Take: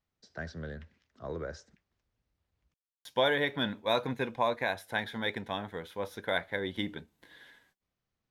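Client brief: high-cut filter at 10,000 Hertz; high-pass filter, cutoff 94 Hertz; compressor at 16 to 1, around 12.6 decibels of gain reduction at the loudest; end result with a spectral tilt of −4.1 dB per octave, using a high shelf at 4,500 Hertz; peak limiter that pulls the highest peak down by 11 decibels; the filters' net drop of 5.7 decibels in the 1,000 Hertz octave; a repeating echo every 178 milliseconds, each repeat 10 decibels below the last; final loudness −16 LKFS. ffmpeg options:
ffmpeg -i in.wav -af "highpass=94,lowpass=10000,equalizer=frequency=1000:width_type=o:gain=-8,highshelf=frequency=4500:gain=9,acompressor=threshold=-36dB:ratio=16,alimiter=level_in=9.5dB:limit=-24dB:level=0:latency=1,volume=-9.5dB,aecho=1:1:178|356|534|712:0.316|0.101|0.0324|0.0104,volume=30dB" out.wav

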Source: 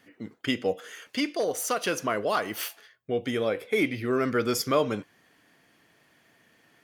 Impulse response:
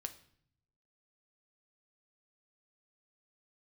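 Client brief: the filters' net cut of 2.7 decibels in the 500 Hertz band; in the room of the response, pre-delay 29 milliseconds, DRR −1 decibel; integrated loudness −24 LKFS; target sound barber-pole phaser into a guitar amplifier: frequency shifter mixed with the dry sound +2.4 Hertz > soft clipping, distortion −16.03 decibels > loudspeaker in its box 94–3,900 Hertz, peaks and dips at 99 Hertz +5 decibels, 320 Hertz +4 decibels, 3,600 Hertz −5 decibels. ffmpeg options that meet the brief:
-filter_complex "[0:a]equalizer=frequency=500:width_type=o:gain=-4,asplit=2[link_01][link_02];[1:a]atrim=start_sample=2205,adelay=29[link_03];[link_02][link_03]afir=irnorm=-1:irlink=0,volume=3.5dB[link_04];[link_01][link_04]amix=inputs=2:normalize=0,asplit=2[link_05][link_06];[link_06]afreqshift=2.4[link_07];[link_05][link_07]amix=inputs=2:normalize=1,asoftclip=threshold=-20.5dB,highpass=94,equalizer=frequency=99:width_type=q:width=4:gain=5,equalizer=frequency=320:width_type=q:width=4:gain=4,equalizer=frequency=3600:width_type=q:width=4:gain=-5,lowpass=frequency=3900:width=0.5412,lowpass=frequency=3900:width=1.3066,volume=7dB"

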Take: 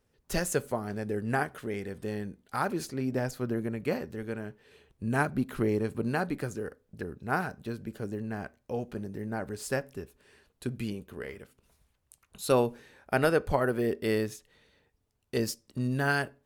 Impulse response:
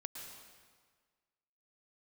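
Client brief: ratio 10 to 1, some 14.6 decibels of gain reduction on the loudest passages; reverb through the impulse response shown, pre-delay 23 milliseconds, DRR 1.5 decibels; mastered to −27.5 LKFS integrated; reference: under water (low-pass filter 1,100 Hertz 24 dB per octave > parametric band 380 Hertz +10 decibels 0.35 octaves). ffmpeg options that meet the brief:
-filter_complex "[0:a]acompressor=threshold=-34dB:ratio=10,asplit=2[link_01][link_02];[1:a]atrim=start_sample=2205,adelay=23[link_03];[link_02][link_03]afir=irnorm=-1:irlink=0,volume=1dB[link_04];[link_01][link_04]amix=inputs=2:normalize=0,lowpass=frequency=1100:width=0.5412,lowpass=frequency=1100:width=1.3066,equalizer=frequency=380:width_type=o:width=0.35:gain=10,volume=8dB"

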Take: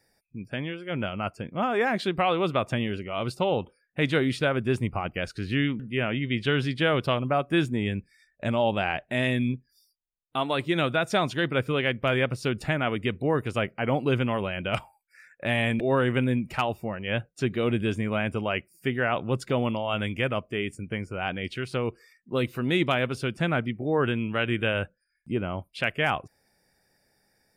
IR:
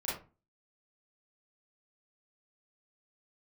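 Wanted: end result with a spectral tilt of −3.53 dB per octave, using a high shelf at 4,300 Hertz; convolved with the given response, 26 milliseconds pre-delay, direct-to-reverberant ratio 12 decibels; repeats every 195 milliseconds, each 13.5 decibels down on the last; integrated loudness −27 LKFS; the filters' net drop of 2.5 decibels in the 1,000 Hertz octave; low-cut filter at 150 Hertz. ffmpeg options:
-filter_complex "[0:a]highpass=150,equalizer=frequency=1000:width_type=o:gain=-4,highshelf=frequency=4300:gain=6,aecho=1:1:195|390:0.211|0.0444,asplit=2[link_01][link_02];[1:a]atrim=start_sample=2205,adelay=26[link_03];[link_02][link_03]afir=irnorm=-1:irlink=0,volume=-16.5dB[link_04];[link_01][link_04]amix=inputs=2:normalize=0,volume=1dB"

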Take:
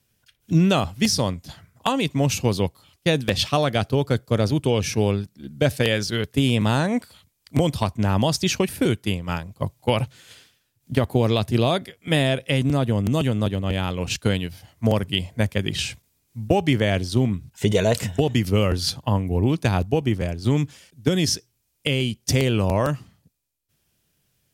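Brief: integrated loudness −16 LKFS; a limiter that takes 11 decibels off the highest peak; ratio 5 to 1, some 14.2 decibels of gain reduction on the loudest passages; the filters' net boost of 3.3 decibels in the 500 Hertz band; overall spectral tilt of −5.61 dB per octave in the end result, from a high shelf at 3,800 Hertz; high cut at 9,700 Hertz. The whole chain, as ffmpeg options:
ffmpeg -i in.wav -af "lowpass=9700,equalizer=frequency=500:width_type=o:gain=4,highshelf=frequency=3800:gain=-4.5,acompressor=threshold=-30dB:ratio=5,volume=21dB,alimiter=limit=-4.5dB:level=0:latency=1" out.wav

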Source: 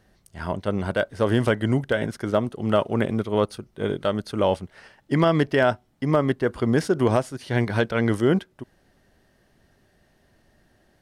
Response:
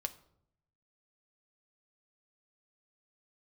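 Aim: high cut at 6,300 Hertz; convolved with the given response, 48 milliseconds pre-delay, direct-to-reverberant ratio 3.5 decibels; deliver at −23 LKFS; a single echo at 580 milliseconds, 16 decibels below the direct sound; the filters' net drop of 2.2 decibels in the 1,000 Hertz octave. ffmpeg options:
-filter_complex "[0:a]lowpass=6300,equalizer=frequency=1000:width_type=o:gain=-3,aecho=1:1:580:0.158,asplit=2[link_01][link_02];[1:a]atrim=start_sample=2205,adelay=48[link_03];[link_02][link_03]afir=irnorm=-1:irlink=0,volume=-3dB[link_04];[link_01][link_04]amix=inputs=2:normalize=0,volume=-0.5dB"

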